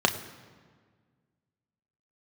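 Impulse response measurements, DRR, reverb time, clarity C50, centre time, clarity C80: 4.5 dB, 1.7 s, 12.5 dB, 14 ms, 13.5 dB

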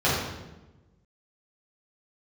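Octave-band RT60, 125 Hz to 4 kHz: 1.5, 1.4, 1.2, 0.95, 0.90, 0.80 seconds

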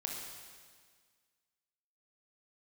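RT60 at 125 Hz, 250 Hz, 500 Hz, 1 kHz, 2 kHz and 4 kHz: 1.7, 1.9, 1.7, 1.7, 1.7, 1.7 seconds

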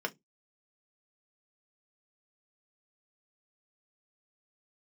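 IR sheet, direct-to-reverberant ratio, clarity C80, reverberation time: 4.5 dB, 37.5 dB, 0.15 s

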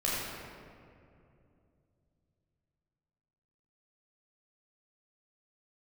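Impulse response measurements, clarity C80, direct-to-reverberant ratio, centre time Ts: −1.0 dB, −7.0 dB, 138 ms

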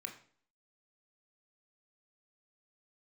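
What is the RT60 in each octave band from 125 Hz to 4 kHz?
0.50, 0.55, 0.50, 0.50, 0.45, 0.45 seconds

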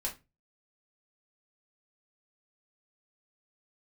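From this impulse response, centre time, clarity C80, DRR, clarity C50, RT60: 15 ms, 21.0 dB, −2.5 dB, 13.0 dB, 0.25 s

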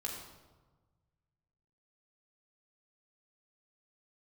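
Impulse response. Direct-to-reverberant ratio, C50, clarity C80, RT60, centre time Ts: −1.5 dB, 3.0 dB, 5.5 dB, 1.3 s, 49 ms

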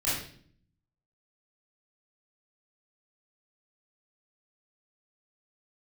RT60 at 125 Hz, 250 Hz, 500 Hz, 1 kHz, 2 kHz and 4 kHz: 1.0, 0.90, 0.60, 0.45, 0.50, 0.50 seconds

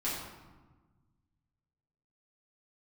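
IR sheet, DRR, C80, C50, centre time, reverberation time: −9.5 dB, 3.5 dB, 1.0 dB, 69 ms, 1.3 s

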